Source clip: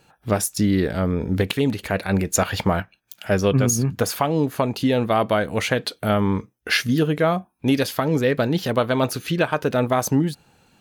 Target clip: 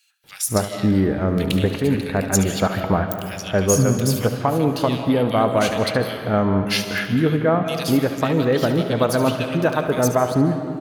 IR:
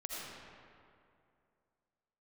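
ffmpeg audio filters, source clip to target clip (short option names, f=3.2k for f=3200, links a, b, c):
-filter_complex "[0:a]asettb=1/sr,asplit=3[a][b][c];[a]atrim=end=2.714[d];[b]atrim=start=2.71:end=3.3,asetpts=PTS-STARTPTS,afade=t=in:d=0.004:c=qsin,afade=t=out:st=0.586:d=0.004:c=qsin,highshelf=f=11k:g=11.5[e];[c]atrim=start=3.296[f];[d][e]acrossfade=d=0.004:c1=hsin:c2=qsin[g];[g][f]acrossfade=d=0.004:c1=qsin:c2=hsin,acrossover=split=2100[h][i];[h]adelay=240[j];[j][i]amix=inputs=2:normalize=0,asplit=2[k][l];[1:a]atrim=start_sample=2205,adelay=72[m];[l][m]afir=irnorm=-1:irlink=0,volume=-7.5dB[n];[k][n]amix=inputs=2:normalize=0,volume=1dB"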